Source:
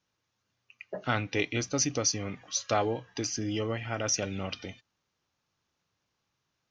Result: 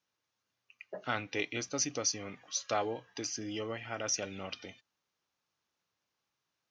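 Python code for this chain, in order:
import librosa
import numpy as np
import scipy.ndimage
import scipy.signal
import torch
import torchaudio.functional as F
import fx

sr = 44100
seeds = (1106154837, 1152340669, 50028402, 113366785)

y = fx.low_shelf(x, sr, hz=170.0, db=-12.0)
y = y * 10.0 ** (-4.0 / 20.0)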